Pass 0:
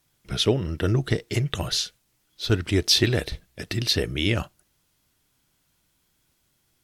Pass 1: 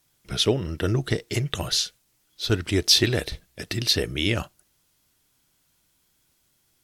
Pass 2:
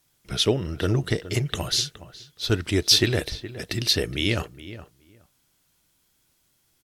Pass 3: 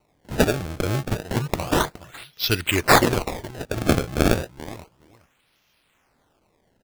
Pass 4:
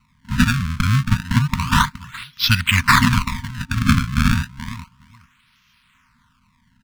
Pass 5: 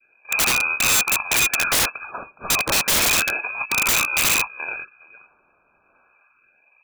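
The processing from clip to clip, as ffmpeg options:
-af "bass=f=250:g=-2,treble=f=4k:g=3"
-filter_complex "[0:a]asplit=2[a][b];[b]adelay=418,lowpass=f=2.1k:p=1,volume=-14dB,asplit=2[c][d];[d]adelay=418,lowpass=f=2.1k:p=1,volume=0.16[e];[a][c][e]amix=inputs=3:normalize=0"
-af "equalizer=f=2.6k:w=1.2:g=13.5,acrusher=samples=26:mix=1:aa=0.000001:lfo=1:lforange=41.6:lforate=0.31,volume=-1.5dB"
-af "lowpass=f=4k:p=1,afftfilt=real='re*(1-between(b*sr/4096,260,910))':imag='im*(1-between(b*sr/4096,260,910))':win_size=4096:overlap=0.75,alimiter=level_in=10dB:limit=-1dB:release=50:level=0:latency=1,volume=-1dB"
-af "adynamicequalizer=threshold=0.0251:dfrequency=1400:dqfactor=0.89:tfrequency=1400:tqfactor=0.89:attack=5:release=100:ratio=0.375:range=2.5:mode=boostabove:tftype=bell,lowpass=f=2.2k:t=q:w=0.5098,lowpass=f=2.2k:t=q:w=0.6013,lowpass=f=2.2k:t=q:w=0.9,lowpass=f=2.2k:t=q:w=2.563,afreqshift=-2600,aeval=exprs='(mod(4.47*val(0)+1,2)-1)/4.47':c=same"

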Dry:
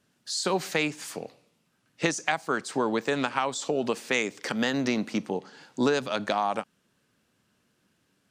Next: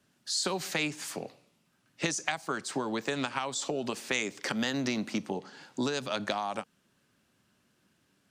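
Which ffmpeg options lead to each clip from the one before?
-filter_complex "[0:a]bandreject=f=470:w=12,acrossover=split=120|3000[a][b][c];[b]acompressor=threshold=-29dB:ratio=6[d];[a][d][c]amix=inputs=3:normalize=0"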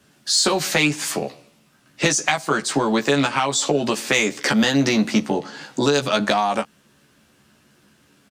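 -filter_complex "[0:a]asplit=2[a][b];[b]asoftclip=type=tanh:threshold=-24.5dB,volume=-3.5dB[c];[a][c]amix=inputs=2:normalize=0,asplit=2[d][e];[e]adelay=14,volume=-4dB[f];[d][f]amix=inputs=2:normalize=0,volume=7.5dB"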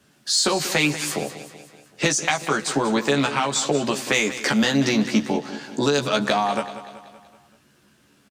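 -af "aecho=1:1:190|380|570|760|950:0.224|0.116|0.0605|0.0315|0.0164,volume=-2dB"

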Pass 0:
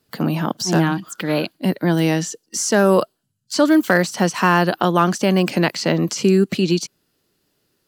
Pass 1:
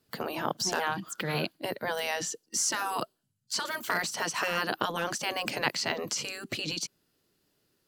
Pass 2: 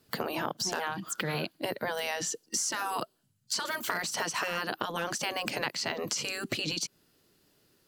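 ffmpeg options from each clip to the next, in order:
-af "afftfilt=real='re*lt(hypot(re,im),0.501)':imag='im*lt(hypot(re,im),0.501)':win_size=1024:overlap=0.75,volume=-5.5dB"
-af "acompressor=threshold=-35dB:ratio=6,volume=6dB"

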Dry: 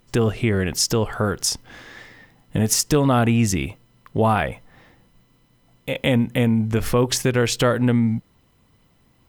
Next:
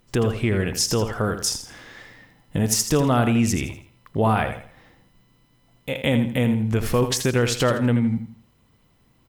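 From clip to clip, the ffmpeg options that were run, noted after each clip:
-af "aecho=1:1:82|164|246|328:0.335|0.107|0.0343|0.011,volume=-2dB"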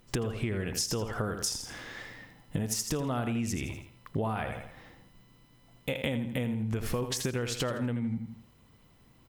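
-af "acompressor=threshold=-28dB:ratio=10"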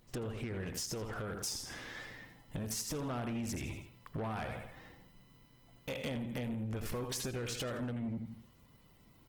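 -af "asoftclip=type=tanh:threshold=-31dB,volume=-2.5dB" -ar 48000 -c:a libopus -b:a 16k

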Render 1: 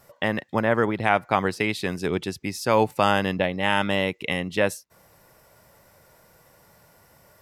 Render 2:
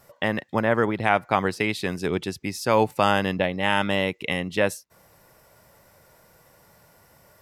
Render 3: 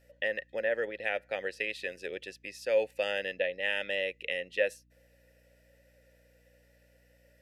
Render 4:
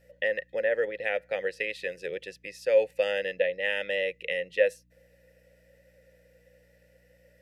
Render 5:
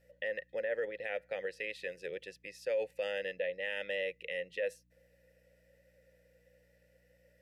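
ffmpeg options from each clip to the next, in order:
-af anull
-filter_complex "[0:a]asplit=3[a][b][c];[a]bandpass=f=530:t=q:w=8,volume=0dB[d];[b]bandpass=f=1.84k:t=q:w=8,volume=-6dB[e];[c]bandpass=f=2.48k:t=q:w=8,volume=-9dB[f];[d][e][f]amix=inputs=3:normalize=0,aeval=exprs='val(0)+0.000794*(sin(2*PI*60*n/s)+sin(2*PI*2*60*n/s)/2+sin(2*PI*3*60*n/s)/3+sin(2*PI*4*60*n/s)/4+sin(2*PI*5*60*n/s)/5)':c=same,crystalizer=i=6.5:c=0,volume=-3dB"
-af "equalizer=f=160:t=o:w=0.33:g=11,equalizer=f=250:t=o:w=0.33:g=-5,equalizer=f=500:t=o:w=0.33:g=8,equalizer=f=2k:t=o:w=0.33:g=4"
-af "alimiter=limit=-20dB:level=0:latency=1:release=36,volume=-6.5dB"

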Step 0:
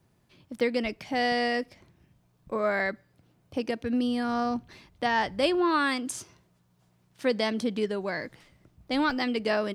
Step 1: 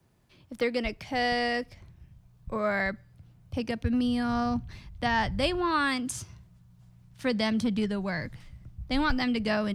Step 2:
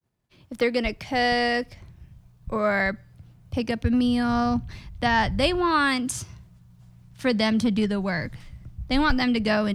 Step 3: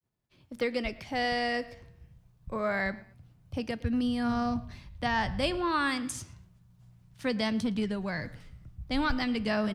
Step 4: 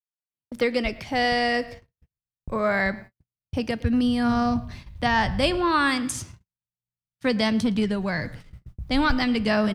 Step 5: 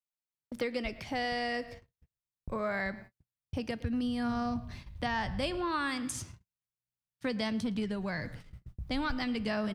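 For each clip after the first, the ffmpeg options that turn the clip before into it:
-filter_complex "[0:a]asubboost=boost=11.5:cutoff=110,acrossover=split=160|650|1800[a][b][c][d];[b]volume=23.5dB,asoftclip=hard,volume=-23.5dB[e];[a][e][c][d]amix=inputs=4:normalize=0"
-af "agate=range=-33dB:threshold=-55dB:ratio=3:detection=peak,volume=5dB"
-filter_complex "[0:a]flanger=delay=6.7:depth=8.1:regen=89:speed=0.27:shape=sinusoidal,asplit=2[a][b];[b]adelay=113,lowpass=f=4k:p=1,volume=-19.5dB,asplit=2[c][d];[d]adelay=113,lowpass=f=4k:p=1,volume=0.3[e];[a][c][e]amix=inputs=3:normalize=0,volume=-2.5dB"
-af "agate=range=-48dB:threshold=-47dB:ratio=16:detection=peak,volume=7dB"
-af "acompressor=threshold=-29dB:ratio=2,volume=-5dB"

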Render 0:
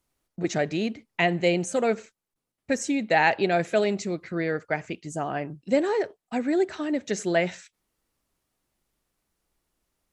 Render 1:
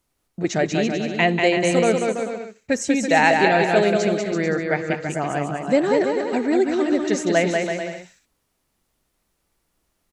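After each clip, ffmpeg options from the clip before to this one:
-af "aecho=1:1:190|332.5|439.4|519.5|579.6:0.631|0.398|0.251|0.158|0.1,volume=4dB"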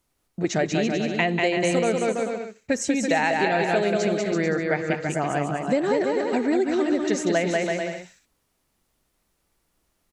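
-af "acompressor=threshold=-18dB:ratio=6"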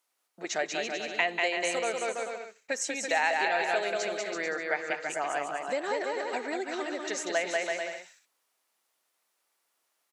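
-af "highpass=670,volume=-2.5dB"

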